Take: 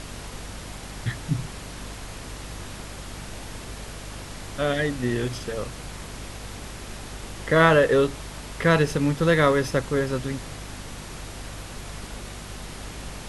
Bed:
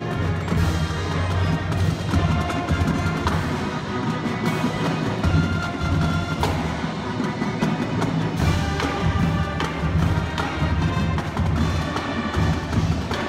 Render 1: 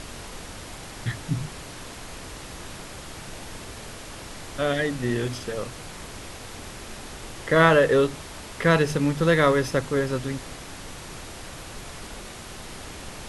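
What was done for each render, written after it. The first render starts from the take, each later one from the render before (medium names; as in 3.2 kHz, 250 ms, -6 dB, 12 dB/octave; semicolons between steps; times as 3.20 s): de-hum 50 Hz, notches 5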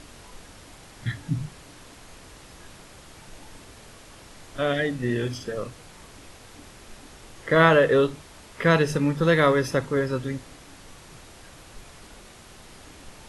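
noise print and reduce 8 dB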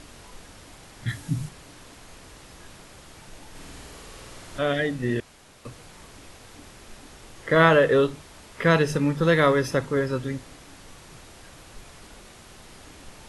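1.08–1.49 s: treble shelf 7.2 kHz +10.5 dB; 3.50–4.59 s: flutter echo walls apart 8.8 m, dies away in 1.3 s; 5.20–5.65 s: room tone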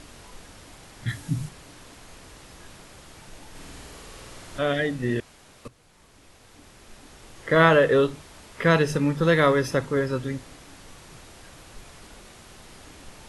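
5.68–7.55 s: fade in, from -14.5 dB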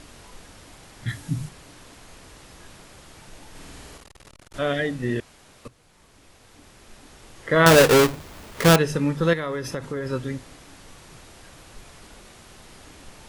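3.97–4.54 s: transformer saturation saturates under 320 Hz; 7.66–8.76 s: square wave that keeps the level; 9.33–10.06 s: compression, threshold -25 dBFS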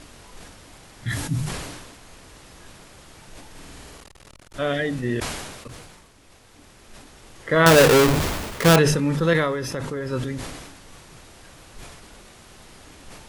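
decay stretcher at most 39 dB/s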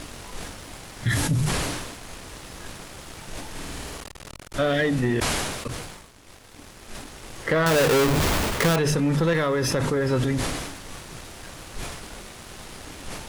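compression 5:1, threshold -25 dBFS, peak gain reduction 14 dB; waveshaping leveller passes 2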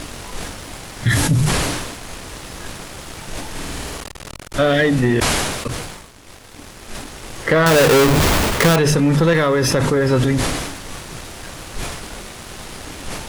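trim +7 dB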